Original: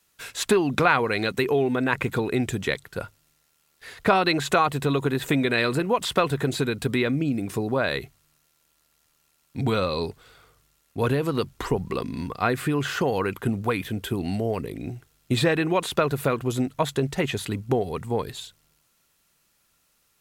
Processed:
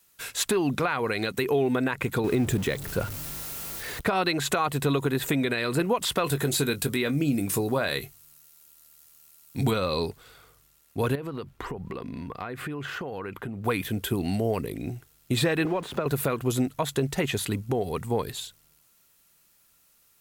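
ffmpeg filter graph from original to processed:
ffmpeg -i in.wav -filter_complex "[0:a]asettb=1/sr,asplit=3[link_01][link_02][link_03];[link_01]atrim=end=2.244[link_04];[link_02]atrim=start=2.24:end=4.01,asetpts=PTS-STARTPTS,afade=type=in:duration=0.004:curve=qsin,afade=type=out:start_time=1.766:duration=0.004:curve=qsin,aeval=exprs='val(0)+0.5*0.0237*sgn(val(0))':channel_layout=same,tiltshelf=frequency=780:gain=3.5[link_05];[link_03]atrim=start=4.006[link_06];[link_04][link_05]acrossfade=duration=0.004:curve1=hsin:curve2=qsin[link_07];[link_07][link_06]acrossfade=duration=0.004:curve1=qsin:curve2=hsin,asettb=1/sr,asplit=3[link_08][link_09][link_10];[link_08]atrim=end=6.244[link_11];[link_09]atrim=start=6.24:end=9.71,asetpts=PTS-STARTPTS,afade=type=in:duration=0.004:curve=qsin,afade=type=out:start_time=3.466:duration=0.004:curve=qsin,highshelf=frequency=4800:gain=8.5,asplit=2[link_12][link_13];[link_13]adelay=21,volume=-11.5dB[link_14];[link_12][link_14]amix=inputs=2:normalize=0,atrim=end_sample=153027[link_15];[link_10]atrim=start=9.706[link_16];[link_11][link_15]acrossfade=duration=0.004:curve1=hsin:curve2=qsin[link_17];[link_17][link_16]acrossfade=duration=0.004:curve1=qsin:curve2=hsin,asettb=1/sr,asplit=3[link_18][link_19][link_20];[link_18]atrim=end=11.154[link_21];[link_19]atrim=start=11.15:end=13.65,asetpts=PTS-STARTPTS,afade=type=in:duration=0.004:curve=qsin,afade=type=out:start_time=2.496:duration=0.004:curve=qsin,bass=frequency=250:gain=-1,treble=frequency=4000:gain=-13,acompressor=threshold=-31dB:ratio=6:attack=3.2:release=140:knee=1:detection=peak[link_22];[link_20]atrim=start=13.646[link_23];[link_21][link_22]acrossfade=duration=0.004:curve1=hsin:curve2=qsin[link_24];[link_24][link_23]acrossfade=duration=0.004:curve1=qsin:curve2=hsin,asettb=1/sr,asplit=3[link_25][link_26][link_27];[link_25]atrim=end=15.654[link_28];[link_26]atrim=start=15.65:end=16.06,asetpts=PTS-STARTPTS,afade=type=in:duration=0.004:curve=qsin,afade=type=out:start_time=0.406:duration=0.004:curve=qsin,aeval=exprs='val(0)+0.5*0.0266*sgn(val(0))':channel_layout=same,lowpass=frequency=1200:poles=1,acrossover=split=100|400[link_29][link_30][link_31];[link_29]acompressor=threshold=-58dB:ratio=4[link_32];[link_30]acompressor=threshold=-31dB:ratio=4[link_33];[link_31]acompressor=threshold=-28dB:ratio=4[link_34];[link_32][link_33][link_34]amix=inputs=3:normalize=0[link_35];[link_27]atrim=start=16.056[link_36];[link_28][link_35]acrossfade=duration=0.004:curve1=hsin:curve2=qsin[link_37];[link_37][link_36]acrossfade=duration=0.004:curve1=qsin:curve2=hsin,highshelf=frequency=10000:gain=10,alimiter=limit=-14.5dB:level=0:latency=1:release=155" out.wav

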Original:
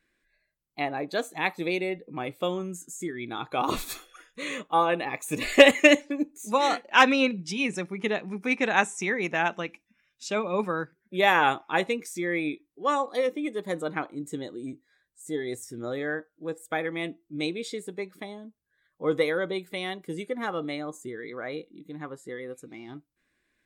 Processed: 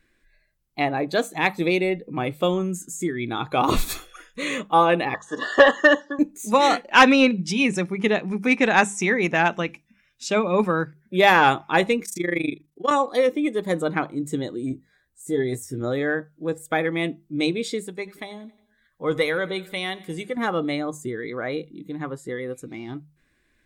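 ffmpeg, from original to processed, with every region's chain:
ffmpeg -i in.wav -filter_complex "[0:a]asettb=1/sr,asplit=3[link_01][link_02][link_03];[link_01]atrim=end=5.144[link_04];[link_02]atrim=start=5.14:end=6.19,asetpts=PTS-STARTPTS,afade=type=in:duration=0.004:curve=qsin,afade=type=out:start_time=1.046:duration=0.004:curve=qsin,asuperstop=centerf=2300:order=20:qfactor=2.6,highpass=480,equalizer=frequency=590:width_type=q:width=4:gain=-3,equalizer=frequency=1100:width_type=q:width=4:gain=8,equalizer=frequency=1700:width_type=q:width=4:gain=6,equalizer=frequency=2700:width_type=q:width=4:gain=-8,equalizer=frequency=4200:width_type=q:width=4:gain=-9,lowpass=frequency=5200:width=0.5412,lowpass=frequency=5200:width=1.3066,acrossover=split=3600[link_05][link_06];[link_06]acompressor=threshold=-43dB:ratio=4:attack=1:release=60[link_07];[link_05][link_07]amix=inputs=2:normalize=0[link_08];[link_03]atrim=start=6.186[link_09];[link_04][link_08]acrossfade=duration=0.004:curve1=hsin:curve2=qsin[link_10];[link_10][link_09]acrossfade=duration=0.004:curve1=qsin:curve2=hsin,asettb=1/sr,asplit=3[link_11][link_12][link_13];[link_11]atrim=end=12.054[link_14];[link_12]atrim=start=12.05:end=12.91,asetpts=PTS-STARTPTS,afade=type=in:duration=0.004:curve=qsin,afade=type=out:start_time=0.856:duration=0.004:curve=qsin,equalizer=frequency=10000:width=0.31:gain=4.5,tremolo=f=25:d=0.919[link_15];[link_13]atrim=start=12.906[link_16];[link_14][link_15]acrossfade=duration=0.004:curve1=hsin:curve2=qsin[link_17];[link_17][link_16]acrossfade=duration=0.004:curve1=qsin:curve2=hsin,asettb=1/sr,asplit=3[link_18][link_19][link_20];[link_18]atrim=end=14.694[link_21];[link_19]atrim=start=14.69:end=15.81,asetpts=PTS-STARTPTS,afade=type=in:duration=0.004:curve=qsin,afade=type=out:start_time=1.116:duration=0.004:curve=qsin,equalizer=frequency=4000:width_type=o:width=2.5:gain=-5,asplit=2[link_22][link_23];[link_23]adelay=15,volume=-6.5dB[link_24];[link_22][link_24]amix=inputs=2:normalize=0,atrim=end_sample=49392[link_25];[link_20]atrim=start=15.806[link_26];[link_21][link_25]acrossfade=duration=0.004:curve1=hsin:curve2=qsin[link_27];[link_27][link_26]acrossfade=duration=0.004:curve1=qsin:curve2=hsin,asettb=1/sr,asplit=3[link_28][link_29][link_30];[link_28]atrim=end=17.864[link_31];[link_29]atrim=start=17.86:end=20.37,asetpts=PTS-STARTPTS,afade=type=in:duration=0.004:curve=qsin,afade=type=out:start_time=2.506:duration=0.004:curve=qsin,equalizer=frequency=300:width=0.52:gain=-6.5,aecho=1:1:90|180|270|360:0.0891|0.0499|0.0279|0.0157,atrim=end_sample=110691[link_32];[link_30]atrim=start=20.366[link_33];[link_31][link_32]acrossfade=duration=0.004:curve1=hsin:curve2=qsin[link_34];[link_34][link_33]acrossfade=duration=0.004:curve1=qsin:curve2=hsin,lowshelf=frequency=130:gain=11.5,bandreject=frequency=50:width_type=h:width=6,bandreject=frequency=100:width_type=h:width=6,bandreject=frequency=150:width_type=h:width=6,bandreject=frequency=200:width_type=h:width=6,acontrast=77,volume=-1dB" out.wav

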